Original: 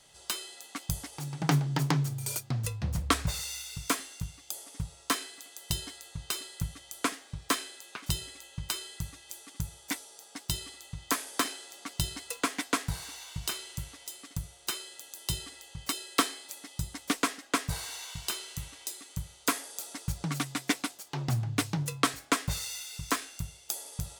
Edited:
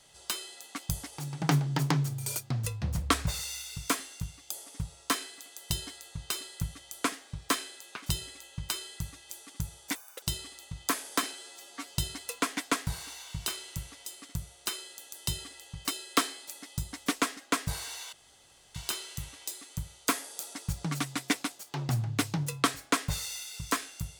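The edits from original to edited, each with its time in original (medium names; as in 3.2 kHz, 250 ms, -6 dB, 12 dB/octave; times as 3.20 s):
9.95–10.44 s: speed 181%
11.55–11.96 s: stretch 1.5×
18.14 s: insert room tone 0.62 s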